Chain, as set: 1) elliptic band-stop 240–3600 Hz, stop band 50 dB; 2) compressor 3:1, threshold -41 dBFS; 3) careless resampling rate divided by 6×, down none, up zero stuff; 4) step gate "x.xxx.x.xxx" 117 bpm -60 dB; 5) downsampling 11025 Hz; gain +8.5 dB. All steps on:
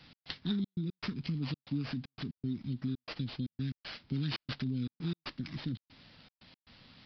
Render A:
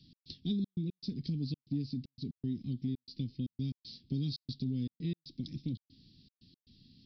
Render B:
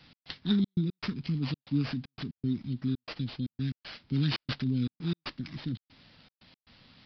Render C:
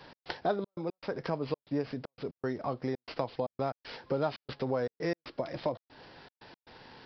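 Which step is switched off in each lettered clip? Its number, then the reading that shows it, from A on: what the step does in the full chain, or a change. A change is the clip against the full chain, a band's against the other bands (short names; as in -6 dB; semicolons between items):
3, 4 kHz band -4.0 dB; 2, momentary loudness spread change +1 LU; 1, 500 Hz band +20.5 dB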